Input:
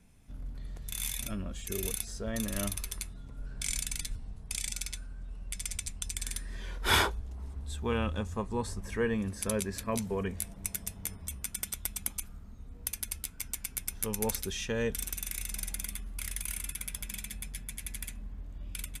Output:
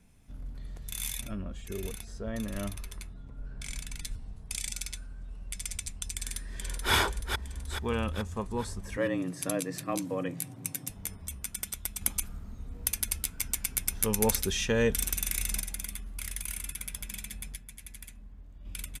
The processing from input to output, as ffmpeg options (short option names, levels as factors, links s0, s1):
-filter_complex "[0:a]asettb=1/sr,asplit=3[s0][s1][s2];[s0]atrim=end=1.214[s3];[s1]atrim=start=1.21:end=4.04,asetpts=PTS-STARTPTS,afade=t=in:d=0.004:c=qsin,afade=t=out:st=2.826:d=0.004:c=qsin,highshelf=f=3400:g=-11[s4];[s2]atrim=start=4.036[s5];[s3][s4]acrossfade=d=0.004:c1=hsin:c2=qsin[s6];[s6][s5]acrossfade=d=0.004:c1=qsin:c2=hsin,asplit=2[s7][s8];[s8]afade=t=in:st=6.13:d=0.01,afade=t=out:st=6.92:d=0.01,aecho=0:1:430|860|1290|1720|2150|2580|3010:0.595662|0.327614|0.180188|0.0991033|0.0545068|0.0299787|0.0164883[s9];[s7][s9]amix=inputs=2:normalize=0,asettb=1/sr,asplit=3[s10][s11][s12];[s10]atrim=end=8.974[s13];[s11]atrim=start=8.97:end=10.9,asetpts=PTS-STARTPTS,afade=t=in:d=0.004:c=qsin,afade=t=out:st=1.926:d=0.004:c=qsin,afreqshift=81[s14];[s12]atrim=start=10.896[s15];[s13][s14]acrossfade=d=0.004:c1=hsin:c2=qsin[s16];[s16][s15]acrossfade=d=0.004:c1=qsin:c2=hsin,asettb=1/sr,asplit=3[s17][s18][s19];[s17]atrim=end=12.014[s20];[s18]atrim=start=12.01:end=15.61,asetpts=PTS-STARTPTS,afade=t=in:d=0.004:c=qsin,afade=t=out:st=3.596:d=0.004:c=qsin,acontrast=44[s21];[s19]atrim=start=15.606[s22];[s20][s21]acrossfade=d=0.004:c1=hsin:c2=qsin[s23];[s23][s22]acrossfade=d=0.004:c1=qsin:c2=hsin,asplit=3[s24][s25][s26];[s24]atrim=end=17.562[s27];[s25]atrim=start=17.558:end=18.652,asetpts=PTS-STARTPTS,volume=0.473[s28];[s26]atrim=start=18.648[s29];[s27][s28]acrossfade=d=0.004:c1=hsin:c2=hsin[s30];[s30][s29]acrossfade=d=0.004:c1=hsin:c2=hsin"